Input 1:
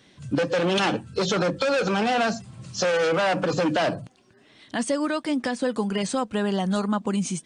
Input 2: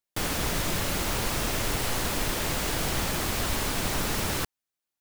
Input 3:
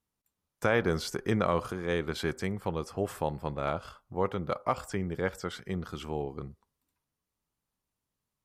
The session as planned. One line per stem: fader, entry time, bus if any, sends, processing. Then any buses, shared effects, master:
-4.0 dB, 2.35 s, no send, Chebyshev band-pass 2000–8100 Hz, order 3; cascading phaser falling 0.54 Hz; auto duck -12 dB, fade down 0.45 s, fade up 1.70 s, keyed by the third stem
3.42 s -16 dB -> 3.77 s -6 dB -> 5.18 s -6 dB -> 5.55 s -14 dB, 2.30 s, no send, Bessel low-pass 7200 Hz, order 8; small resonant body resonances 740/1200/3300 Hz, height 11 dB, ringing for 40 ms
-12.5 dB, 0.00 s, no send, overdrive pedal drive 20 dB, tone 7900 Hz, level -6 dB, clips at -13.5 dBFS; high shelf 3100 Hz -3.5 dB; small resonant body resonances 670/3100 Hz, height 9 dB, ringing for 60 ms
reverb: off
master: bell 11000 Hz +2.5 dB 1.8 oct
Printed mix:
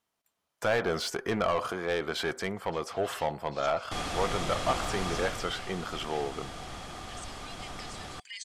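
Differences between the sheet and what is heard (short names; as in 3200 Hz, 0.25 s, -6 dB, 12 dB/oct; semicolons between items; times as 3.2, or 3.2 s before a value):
stem 2: entry 2.30 s -> 3.75 s; stem 3 -12.5 dB -> -5.5 dB; master: missing bell 11000 Hz +2.5 dB 1.8 oct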